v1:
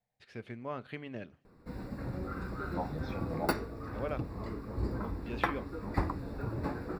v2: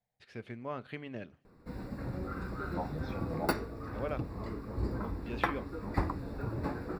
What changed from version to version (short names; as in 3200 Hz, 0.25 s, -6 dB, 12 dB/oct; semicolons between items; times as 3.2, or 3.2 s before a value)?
second voice: send -10.5 dB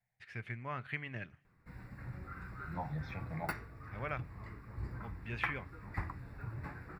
background -8.5 dB; master: add graphic EQ 125/250/500/2000/4000 Hz +6/-7/-8/+10/-6 dB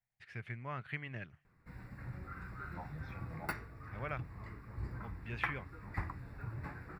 first voice: send -11.5 dB; second voice -7.5 dB